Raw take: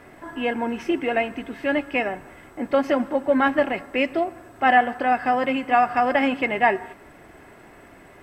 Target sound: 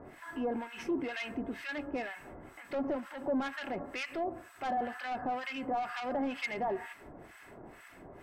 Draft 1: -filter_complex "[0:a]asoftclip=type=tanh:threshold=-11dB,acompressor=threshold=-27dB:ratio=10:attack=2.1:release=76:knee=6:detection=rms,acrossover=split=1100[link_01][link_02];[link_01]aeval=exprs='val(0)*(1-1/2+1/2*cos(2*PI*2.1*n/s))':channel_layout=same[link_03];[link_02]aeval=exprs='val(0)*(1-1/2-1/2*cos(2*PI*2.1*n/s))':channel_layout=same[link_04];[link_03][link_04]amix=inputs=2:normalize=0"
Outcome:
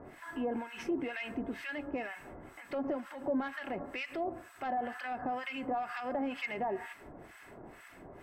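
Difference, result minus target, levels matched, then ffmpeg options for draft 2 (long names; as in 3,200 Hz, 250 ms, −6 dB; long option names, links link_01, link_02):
soft clipping: distortion −9 dB
-filter_complex "[0:a]asoftclip=type=tanh:threshold=-20dB,acompressor=threshold=-27dB:ratio=10:attack=2.1:release=76:knee=6:detection=rms,acrossover=split=1100[link_01][link_02];[link_01]aeval=exprs='val(0)*(1-1/2+1/2*cos(2*PI*2.1*n/s))':channel_layout=same[link_03];[link_02]aeval=exprs='val(0)*(1-1/2-1/2*cos(2*PI*2.1*n/s))':channel_layout=same[link_04];[link_03][link_04]amix=inputs=2:normalize=0"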